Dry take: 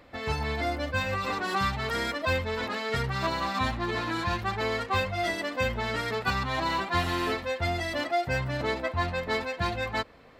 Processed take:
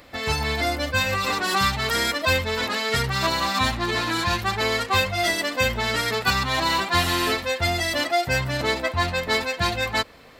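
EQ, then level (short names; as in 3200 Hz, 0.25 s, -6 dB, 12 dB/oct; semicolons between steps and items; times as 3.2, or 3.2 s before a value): high shelf 3000 Hz +10.5 dB; high shelf 8900 Hz +3.5 dB; +4.0 dB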